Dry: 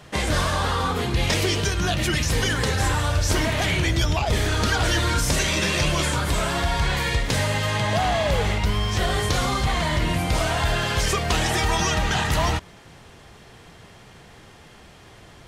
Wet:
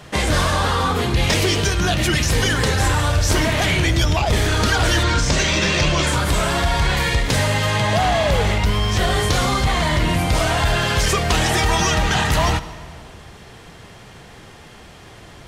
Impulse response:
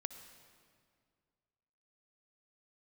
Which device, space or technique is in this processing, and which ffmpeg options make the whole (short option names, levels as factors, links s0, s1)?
saturated reverb return: -filter_complex "[0:a]asettb=1/sr,asplit=3[s0][s1][s2];[s0]atrim=end=5.034[s3];[s1]atrim=start=5.03:end=6.07,asetpts=PTS-STARTPTS,afade=t=in:d=0.004:c=qsin,afade=t=out:st=1.036:d=0.004:c=qsin,lowpass=f=7100:w=0.5412,lowpass=f=7100:w=1.3066[s4];[s2]atrim=start=6.066[s5];[s3][s4]acrossfade=d=0.004:c1=hsin:c2=qsin[s6];[s6][s5]acrossfade=d=0.004:c1=qsin:c2=hsin,asplit=2[s7][s8];[1:a]atrim=start_sample=2205[s9];[s8][s9]afir=irnorm=-1:irlink=0,asoftclip=type=tanh:threshold=0.0944,volume=1.12[s10];[s7][s10]amix=inputs=2:normalize=0"